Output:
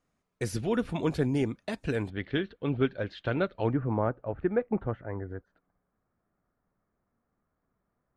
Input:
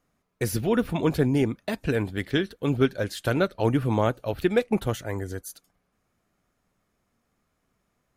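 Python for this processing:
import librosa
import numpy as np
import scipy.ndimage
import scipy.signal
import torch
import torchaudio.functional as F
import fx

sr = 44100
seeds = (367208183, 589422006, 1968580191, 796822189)

y = fx.lowpass(x, sr, hz=fx.steps((0.0, 9700.0), (2.1, 3600.0), (3.73, 1700.0)), slope=24)
y = y * librosa.db_to_amplitude(-5.0)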